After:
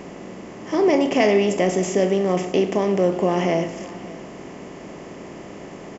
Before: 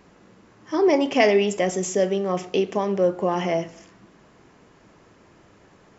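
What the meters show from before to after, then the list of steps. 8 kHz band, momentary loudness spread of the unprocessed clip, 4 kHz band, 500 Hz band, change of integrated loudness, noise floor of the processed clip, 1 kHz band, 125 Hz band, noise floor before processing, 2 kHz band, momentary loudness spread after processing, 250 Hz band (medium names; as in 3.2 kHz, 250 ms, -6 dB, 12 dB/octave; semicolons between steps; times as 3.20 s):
no reading, 8 LU, +0.5 dB, +2.0 dB, +2.0 dB, -38 dBFS, +1.0 dB, +5.0 dB, -55 dBFS, +0.5 dB, 20 LU, +3.5 dB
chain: spectral levelling over time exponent 0.6; bass shelf 230 Hz +10 dB; on a send: delay 583 ms -19 dB; on the sum: trim -3.5 dB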